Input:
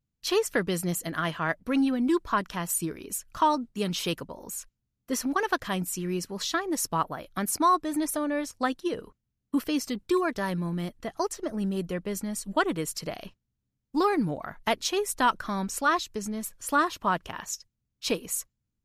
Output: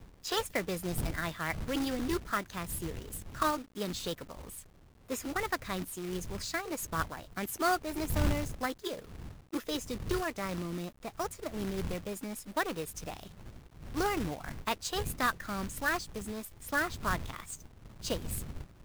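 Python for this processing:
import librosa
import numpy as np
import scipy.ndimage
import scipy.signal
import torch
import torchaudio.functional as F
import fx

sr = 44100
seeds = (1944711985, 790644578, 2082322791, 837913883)

y = fx.dmg_wind(x, sr, seeds[0], corner_hz=95.0, level_db=-36.0)
y = fx.high_shelf(y, sr, hz=11000.0, db=-8.5)
y = fx.formant_shift(y, sr, semitones=3)
y = fx.quant_companded(y, sr, bits=4)
y = y * librosa.db_to_amplitude(-7.0)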